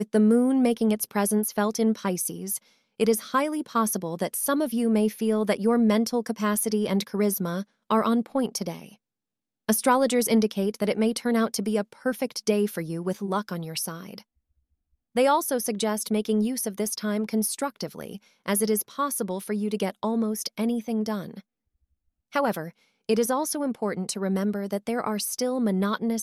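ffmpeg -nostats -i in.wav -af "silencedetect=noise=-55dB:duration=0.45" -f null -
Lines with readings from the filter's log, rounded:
silence_start: 8.96
silence_end: 9.68 | silence_duration: 0.73
silence_start: 14.23
silence_end: 15.15 | silence_duration: 0.92
silence_start: 21.41
silence_end: 22.32 | silence_duration: 0.91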